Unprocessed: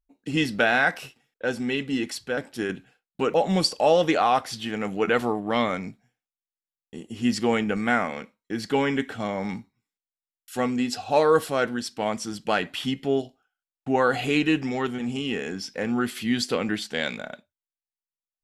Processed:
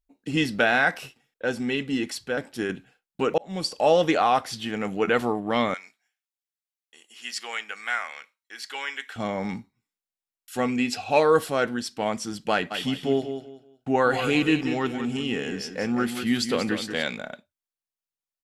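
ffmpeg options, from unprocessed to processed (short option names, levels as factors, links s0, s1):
-filter_complex "[0:a]asettb=1/sr,asplit=3[s0][s1][s2];[s0]atrim=end=5.744[s3];[s1]atrim=start=5.74:end=9.16,asetpts=PTS-STARTPTS,afade=t=in:d=0.004:c=qsin,afade=t=out:st=3.416:d=0.004:c=qsin,highpass=1400[s4];[s2]atrim=start=9.156[s5];[s3][s4]acrossfade=d=0.004:c1=hsin:c2=qsin[s6];[s6][s5]acrossfade=d=0.004:c1=qsin:c2=hsin,asettb=1/sr,asplit=3[s7][s8][s9];[s7]atrim=end=10.684[s10];[s8]atrim=start=10.68:end=11.2,asetpts=PTS-STARTPTS,afade=t=in:d=0.004:c=qsin,afade=t=out:st=0.516:d=0.004:c=qsin,equalizer=f=2400:w=3.9:g=10.5[s11];[s9]atrim=start=11.196[s12];[s10][s11]acrossfade=d=0.004:c1=hsin:c2=qsin[s13];[s13][s12]acrossfade=d=0.004:c1=qsin:c2=hsin,asplit=3[s14][s15][s16];[s14]afade=t=out:st=12.7:d=0.02[s17];[s15]aecho=1:1:186|372|558:0.355|0.0923|0.024,afade=t=in:st=12.7:d=0.02,afade=t=out:st=17.02:d=0.02[s18];[s16]afade=t=in:st=17.02:d=0.02[s19];[s17][s18][s19]amix=inputs=3:normalize=0,asplit=2[s20][s21];[s20]atrim=end=3.38,asetpts=PTS-STARTPTS,afade=t=out:st=3.376:d=0.004:c=hsin[s22];[s21]atrim=start=3.38,asetpts=PTS-STARTPTS,afade=t=in:d=0.5[s23];[s22][s23]concat=n=2:v=0:a=1"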